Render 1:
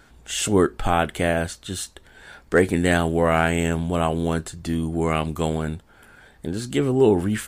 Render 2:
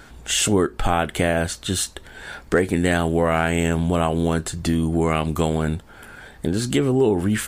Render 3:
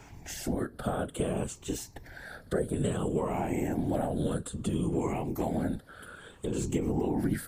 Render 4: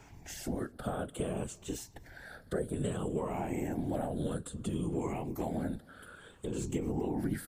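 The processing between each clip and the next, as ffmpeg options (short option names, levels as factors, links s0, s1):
-af "acompressor=threshold=0.0501:ratio=3,volume=2.51"
-filter_complex "[0:a]afftfilt=real='re*pow(10,12/40*sin(2*PI*(0.71*log(max(b,1)*sr/1024/100)/log(2)-(-0.59)*(pts-256)/sr)))':imag='im*pow(10,12/40*sin(2*PI*(0.71*log(max(b,1)*sr/1024/100)/log(2)-(-0.59)*(pts-256)/sr)))':win_size=1024:overlap=0.75,acrossover=split=110|860|7800[s0][s1][s2][s3];[s0]acompressor=threshold=0.0141:ratio=4[s4];[s1]acompressor=threshold=0.112:ratio=4[s5];[s2]acompressor=threshold=0.0112:ratio=4[s6];[s3]acompressor=threshold=0.0158:ratio=4[s7];[s4][s5][s6][s7]amix=inputs=4:normalize=0,afftfilt=real='hypot(re,im)*cos(2*PI*random(0))':imag='hypot(re,im)*sin(2*PI*random(1))':win_size=512:overlap=0.75,volume=0.841"
-filter_complex "[0:a]asplit=2[s0][s1];[s1]adelay=256.6,volume=0.0501,highshelf=f=4000:g=-5.77[s2];[s0][s2]amix=inputs=2:normalize=0,volume=0.596"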